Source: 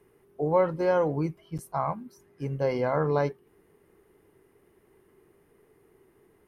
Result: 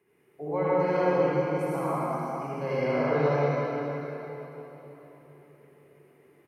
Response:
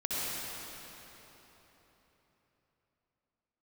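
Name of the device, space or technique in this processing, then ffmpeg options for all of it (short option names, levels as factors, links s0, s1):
PA in a hall: -filter_complex "[0:a]highpass=120,equalizer=f=2300:t=o:w=0.67:g=8,aecho=1:1:188:0.398[s0];[1:a]atrim=start_sample=2205[s1];[s0][s1]afir=irnorm=-1:irlink=0,volume=0.422"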